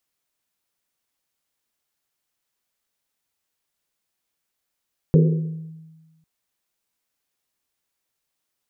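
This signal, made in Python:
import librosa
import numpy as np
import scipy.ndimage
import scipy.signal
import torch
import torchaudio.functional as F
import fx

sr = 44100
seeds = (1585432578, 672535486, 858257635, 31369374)

y = fx.risset_drum(sr, seeds[0], length_s=1.1, hz=160.0, decay_s=1.37, noise_hz=440.0, noise_width_hz=140.0, noise_pct=20)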